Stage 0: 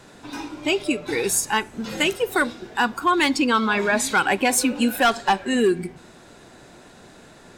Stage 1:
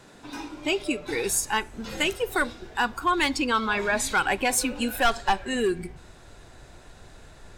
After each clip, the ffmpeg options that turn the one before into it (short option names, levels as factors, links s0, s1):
-af "asubboost=boost=9.5:cutoff=70,volume=0.668"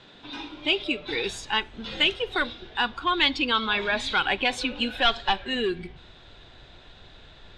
-af "lowpass=f=3500:t=q:w=4.3,volume=0.75"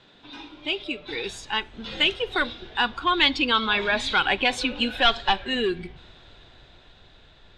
-af "dynaudnorm=f=320:g=11:m=2.99,volume=0.631"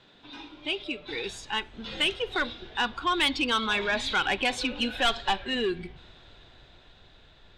-af "asoftclip=type=tanh:threshold=0.188,volume=0.75"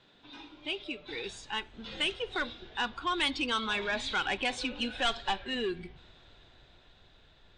-af "volume=0.596" -ar 22050 -c:a libmp3lame -b:a 56k